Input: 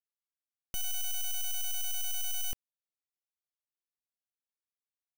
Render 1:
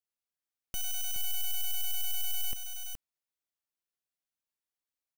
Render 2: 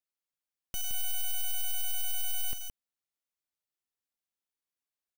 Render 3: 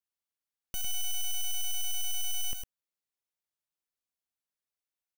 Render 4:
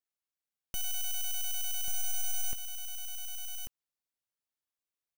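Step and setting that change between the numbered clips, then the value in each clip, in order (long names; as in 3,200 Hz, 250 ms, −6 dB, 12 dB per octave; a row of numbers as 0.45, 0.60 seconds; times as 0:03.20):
single-tap delay, delay time: 421, 168, 105, 1,140 milliseconds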